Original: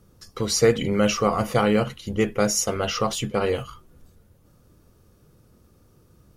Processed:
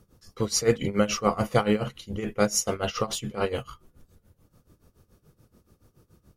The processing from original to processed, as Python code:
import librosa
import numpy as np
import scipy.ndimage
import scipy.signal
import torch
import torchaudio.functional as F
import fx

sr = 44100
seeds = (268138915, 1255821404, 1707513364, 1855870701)

y = x * (1.0 - 0.85 / 2.0 + 0.85 / 2.0 * np.cos(2.0 * np.pi * 7.0 * (np.arange(len(x)) / sr)))